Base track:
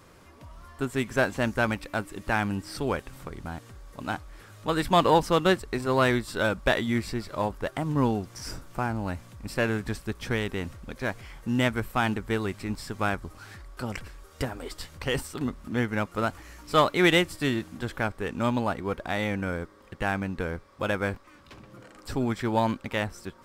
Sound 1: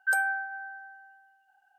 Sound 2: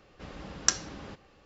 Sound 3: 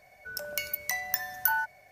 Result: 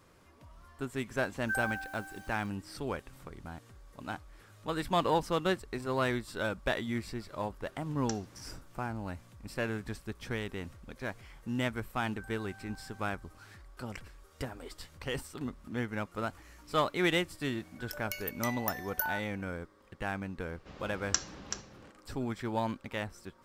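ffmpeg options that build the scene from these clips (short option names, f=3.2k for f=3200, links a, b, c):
-filter_complex "[1:a]asplit=2[a][b];[2:a]asplit=2[c][d];[0:a]volume=-8dB[e];[a]acrusher=bits=7:mix=0:aa=0.000001[f];[b]acompressor=threshold=-39dB:ratio=6:attack=3.2:release=140:knee=1:detection=peak[g];[d]aecho=1:1:380:0.376[h];[f]atrim=end=1.78,asetpts=PTS-STARTPTS,volume=-8dB,afade=t=in:d=0.004:c=hsin,afade=t=out:st=1.776:d=0.004:c=hsin,adelay=1420[i];[c]atrim=end=1.45,asetpts=PTS-STARTPTS,volume=-16.5dB,afade=t=in:d=0.004:c=hsin,afade=t=out:st=1.446:d=0.004:c=hsin,adelay=7410[j];[g]atrim=end=1.78,asetpts=PTS-STARTPTS,volume=-11.5dB,afade=t=in:d=0.004:c=hsin,afade=t=out:st=1.776:d=0.004:c=hsin,adelay=12110[k];[3:a]atrim=end=1.91,asetpts=PTS-STARTPTS,volume=-7dB,afade=t=in:d=0.004:c=hsin,afade=t=out:st=1.906:d=0.004:c=hsin,adelay=17540[l];[h]atrim=end=1.45,asetpts=PTS-STARTPTS,volume=-5.5dB,afade=t=in:d=0.004:c=hsin,afade=t=out:st=1.446:d=0.004:c=hsin,adelay=20460[m];[e][i][j][k][l][m]amix=inputs=6:normalize=0"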